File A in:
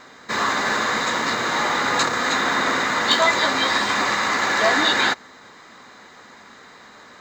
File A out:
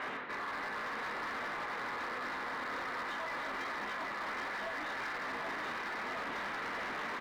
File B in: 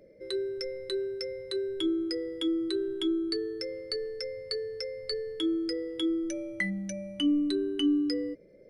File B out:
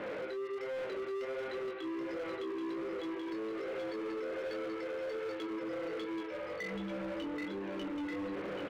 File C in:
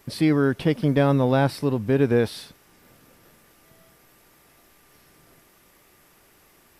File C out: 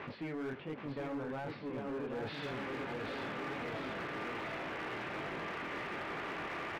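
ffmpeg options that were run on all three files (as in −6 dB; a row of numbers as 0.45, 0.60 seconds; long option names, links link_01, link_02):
-filter_complex "[0:a]aeval=exprs='val(0)+0.5*0.0355*sgn(val(0))':channel_layout=same,flanger=delay=19:depth=6.2:speed=1.3,lowpass=frequency=2600:width=0.5412,lowpass=frequency=2600:width=1.3066,areverse,acompressor=threshold=-32dB:ratio=12,areverse,highpass=frequency=290:poles=1,asplit=2[link_01][link_02];[link_02]aecho=0:1:780|1482|2114|2682|3194:0.631|0.398|0.251|0.158|0.1[link_03];[link_01][link_03]amix=inputs=2:normalize=0,alimiter=level_in=4.5dB:limit=-24dB:level=0:latency=1:release=58,volume=-4.5dB,volume=35.5dB,asoftclip=hard,volume=-35.5dB"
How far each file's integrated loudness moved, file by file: −18.5, −7.5, −18.5 LU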